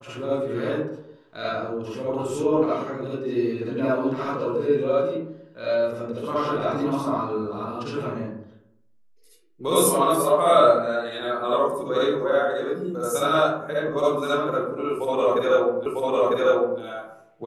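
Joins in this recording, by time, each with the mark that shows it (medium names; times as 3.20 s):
15.86 s: repeat of the last 0.95 s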